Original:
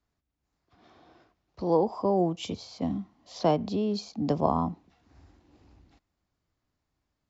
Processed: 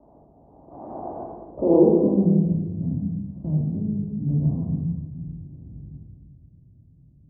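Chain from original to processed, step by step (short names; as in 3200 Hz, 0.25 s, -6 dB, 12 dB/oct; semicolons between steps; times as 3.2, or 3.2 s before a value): per-bin compression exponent 0.6; low-pass opened by the level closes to 670 Hz, open at -23 dBFS; 1.65–3.83 high shelf 2300 Hz +11.5 dB; low-pass sweep 800 Hz -> 130 Hz, 1.34–2.45; shoebox room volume 870 m³, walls mixed, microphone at 2.6 m; gain -2 dB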